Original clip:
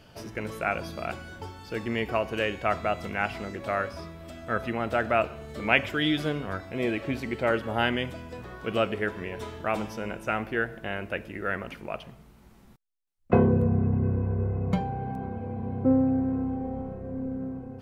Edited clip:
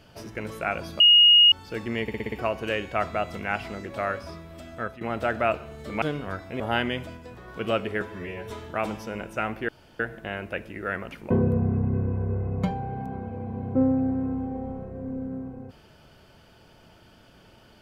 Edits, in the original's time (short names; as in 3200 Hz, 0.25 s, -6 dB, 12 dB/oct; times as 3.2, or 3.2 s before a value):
1–1.52 bleep 2870 Hz -11.5 dBFS
2.02 stutter 0.06 s, 6 plays
4.44–4.71 fade out, to -16.5 dB
5.72–6.23 cut
6.81–7.67 cut
8.24–8.55 gain -3 dB
9.08–9.41 stretch 1.5×
10.59 insert room tone 0.31 s
11.9–13.4 cut